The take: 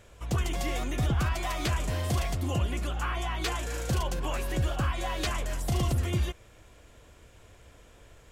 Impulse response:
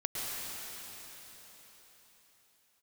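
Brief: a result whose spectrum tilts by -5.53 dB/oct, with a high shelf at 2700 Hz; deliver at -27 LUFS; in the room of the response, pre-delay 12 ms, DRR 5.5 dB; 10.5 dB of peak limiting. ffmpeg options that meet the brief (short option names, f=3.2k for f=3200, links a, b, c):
-filter_complex "[0:a]highshelf=f=2.7k:g=-5.5,alimiter=level_in=6.5dB:limit=-24dB:level=0:latency=1,volume=-6.5dB,asplit=2[a][b];[1:a]atrim=start_sample=2205,adelay=12[c];[b][c]afir=irnorm=-1:irlink=0,volume=-11dB[d];[a][d]amix=inputs=2:normalize=0,volume=11.5dB"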